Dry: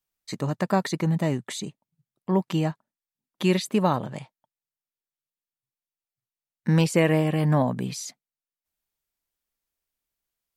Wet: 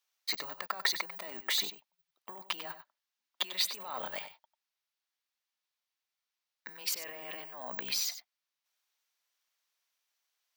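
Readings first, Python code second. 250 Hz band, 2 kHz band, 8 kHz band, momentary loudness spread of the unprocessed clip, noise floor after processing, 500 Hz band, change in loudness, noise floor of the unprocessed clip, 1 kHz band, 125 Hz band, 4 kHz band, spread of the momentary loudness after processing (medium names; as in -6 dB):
-31.0 dB, -4.5 dB, -1.0 dB, 16 LU, under -85 dBFS, -21.0 dB, -10.0 dB, under -85 dBFS, -12.5 dB, -38.5 dB, +3.0 dB, 17 LU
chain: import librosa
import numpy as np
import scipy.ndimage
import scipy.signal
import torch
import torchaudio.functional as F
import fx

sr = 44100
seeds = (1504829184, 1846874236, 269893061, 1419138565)

y = (np.kron(x[::2], np.eye(2)[0]) * 2)[:len(x)]
y = fx.high_shelf_res(y, sr, hz=6000.0, db=-7.5, q=1.5)
y = fx.over_compress(y, sr, threshold_db=-30.0, ratio=-1.0)
y = fx.tube_stage(y, sr, drive_db=12.0, bias=0.5)
y = scipy.signal.sosfilt(scipy.signal.butter(2, 820.0, 'highpass', fs=sr, output='sos'), y)
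y = y + 10.0 ** (-11.5 / 20.0) * np.pad(y, (int(95 * sr / 1000.0), 0))[:len(y)]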